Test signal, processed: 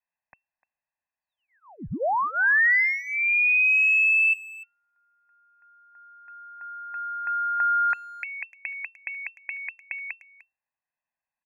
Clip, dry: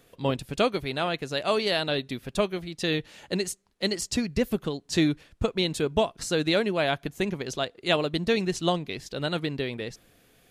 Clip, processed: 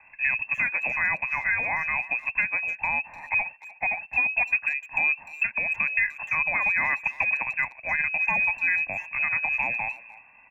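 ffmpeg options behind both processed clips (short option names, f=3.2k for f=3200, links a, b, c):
-filter_complex "[0:a]aecho=1:1:1.1:0.92,alimiter=limit=-18.5dB:level=0:latency=1:release=107,lowpass=f=2.3k:t=q:w=0.5098,lowpass=f=2.3k:t=q:w=0.6013,lowpass=f=2.3k:t=q:w=0.9,lowpass=f=2.3k:t=q:w=2.563,afreqshift=-2700,acrossover=split=130|1900[a][b][c];[a]acompressor=threshold=-53dB:ratio=4[d];[b]acompressor=threshold=-29dB:ratio=4[e];[c]acompressor=threshold=-27dB:ratio=4[f];[d][e][f]amix=inputs=3:normalize=0,asplit=2[g][h];[h]adelay=300,highpass=300,lowpass=3.4k,asoftclip=type=hard:threshold=-25.5dB,volume=-18dB[i];[g][i]amix=inputs=2:normalize=0,volume=5dB"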